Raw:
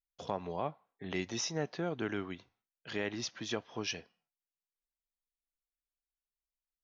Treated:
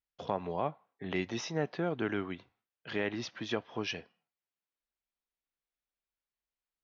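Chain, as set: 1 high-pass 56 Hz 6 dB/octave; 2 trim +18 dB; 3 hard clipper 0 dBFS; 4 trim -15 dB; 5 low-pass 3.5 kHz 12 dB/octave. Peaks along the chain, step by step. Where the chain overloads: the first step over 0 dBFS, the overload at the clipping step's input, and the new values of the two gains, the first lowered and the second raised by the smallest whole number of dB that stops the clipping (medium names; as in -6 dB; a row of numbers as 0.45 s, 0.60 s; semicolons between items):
-21.0 dBFS, -3.0 dBFS, -3.0 dBFS, -18.0 dBFS, -18.0 dBFS; nothing clips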